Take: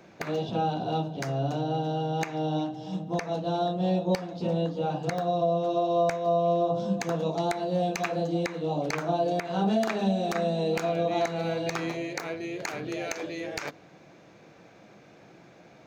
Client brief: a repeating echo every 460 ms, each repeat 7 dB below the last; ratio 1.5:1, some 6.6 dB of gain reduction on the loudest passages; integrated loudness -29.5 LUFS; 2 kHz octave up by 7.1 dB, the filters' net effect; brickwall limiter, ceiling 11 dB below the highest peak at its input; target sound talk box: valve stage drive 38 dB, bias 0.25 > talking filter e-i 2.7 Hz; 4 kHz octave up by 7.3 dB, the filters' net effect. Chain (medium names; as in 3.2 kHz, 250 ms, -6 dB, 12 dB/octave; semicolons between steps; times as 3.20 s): peaking EQ 2 kHz +7 dB; peaking EQ 4 kHz +6.5 dB; compression 1.5:1, threshold -39 dBFS; peak limiter -26 dBFS; feedback delay 460 ms, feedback 45%, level -7 dB; valve stage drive 38 dB, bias 0.25; talking filter e-i 2.7 Hz; trim +22.5 dB